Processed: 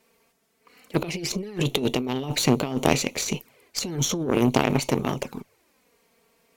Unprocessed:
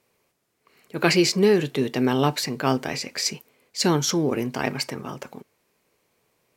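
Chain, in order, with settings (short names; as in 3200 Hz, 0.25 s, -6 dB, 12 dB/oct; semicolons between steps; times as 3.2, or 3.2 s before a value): negative-ratio compressor -28 dBFS, ratio -1; envelope flanger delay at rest 4.6 ms, full sweep at -26 dBFS; added harmonics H 6 -11 dB, 7 -27 dB, 8 -13 dB, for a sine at -9.5 dBFS; gain +6 dB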